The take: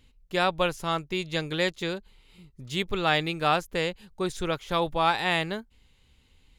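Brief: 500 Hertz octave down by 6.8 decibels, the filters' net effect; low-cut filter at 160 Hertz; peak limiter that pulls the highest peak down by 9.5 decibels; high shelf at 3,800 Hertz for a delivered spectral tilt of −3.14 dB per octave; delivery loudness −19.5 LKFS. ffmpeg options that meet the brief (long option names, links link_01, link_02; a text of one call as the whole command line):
ffmpeg -i in.wav -af "highpass=160,equalizer=frequency=500:width_type=o:gain=-9,highshelf=frequency=3800:gain=6,volume=12dB,alimiter=limit=-5.5dB:level=0:latency=1" out.wav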